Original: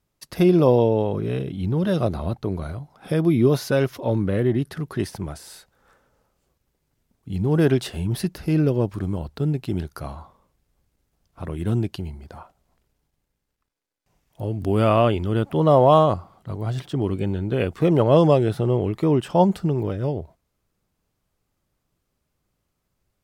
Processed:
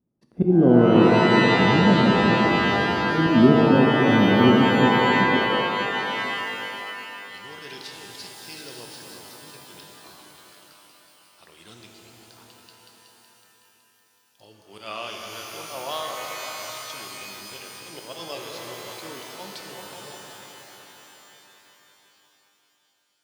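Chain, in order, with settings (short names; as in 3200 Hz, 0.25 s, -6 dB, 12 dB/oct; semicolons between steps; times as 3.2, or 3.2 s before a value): repeats that get brighter 0.186 s, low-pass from 200 Hz, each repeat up 2 oct, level -6 dB; band-pass sweep 240 Hz -> 4900 Hz, 5.21–6.1; auto swell 0.109 s; shimmer reverb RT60 3.4 s, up +12 st, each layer -2 dB, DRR 2 dB; gain +6.5 dB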